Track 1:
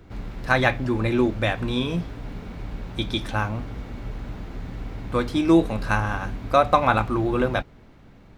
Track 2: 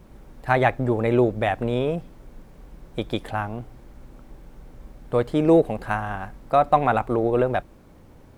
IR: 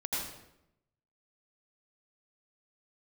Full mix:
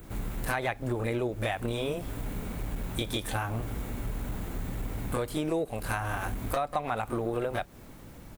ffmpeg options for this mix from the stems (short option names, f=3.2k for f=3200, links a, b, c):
-filter_complex "[0:a]acompressor=threshold=-21dB:ratio=6,aexciter=amount=10:drive=3.2:freq=7.4k,aeval=exprs='clip(val(0),-1,0.0398)':c=same,volume=0dB[a];[1:a]highshelf=f=2.5k:g=11.5,volume=-1,adelay=29,volume=-3.5dB,asplit=2[b][c];[c]apad=whole_len=369210[d];[a][d]sidechaincompress=threshold=-25dB:ratio=8:attack=39:release=521[e];[e][b]amix=inputs=2:normalize=0,acompressor=threshold=-28dB:ratio=4"